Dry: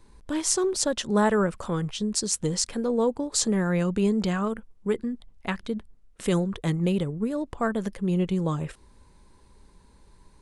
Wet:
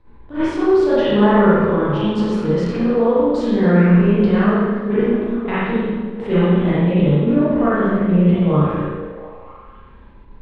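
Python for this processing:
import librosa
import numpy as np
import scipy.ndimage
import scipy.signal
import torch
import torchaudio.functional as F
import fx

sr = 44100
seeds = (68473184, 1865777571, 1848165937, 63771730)

p1 = fx.spec_trails(x, sr, decay_s=0.68)
p2 = fx.level_steps(p1, sr, step_db=15)
p3 = p1 + (p2 * 10.0 ** (-0.5 / 20.0))
p4 = 10.0 ** (-8.0 / 20.0) * np.tanh(p3 / 10.0 ** (-8.0 / 20.0))
p5 = fx.air_absorb(p4, sr, metres=370.0)
p6 = fx.echo_stepped(p5, sr, ms=235, hz=270.0, octaves=0.7, feedback_pct=70, wet_db=-7.5)
p7 = fx.rev_spring(p6, sr, rt60_s=1.2, pass_ms=(34, 47), chirp_ms=65, drr_db=-9.5)
p8 = fx.attack_slew(p7, sr, db_per_s=190.0)
y = p8 * 10.0 ** (-3.0 / 20.0)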